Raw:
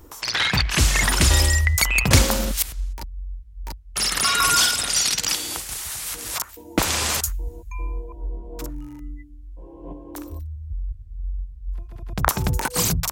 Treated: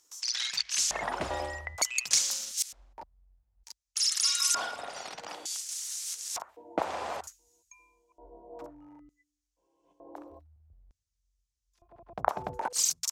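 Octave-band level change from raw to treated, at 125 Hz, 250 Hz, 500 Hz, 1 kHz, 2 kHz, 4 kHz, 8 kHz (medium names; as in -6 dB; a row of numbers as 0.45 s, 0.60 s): -28.0 dB, -18.0 dB, -7.5 dB, -8.5 dB, -15.5 dB, -9.0 dB, -7.0 dB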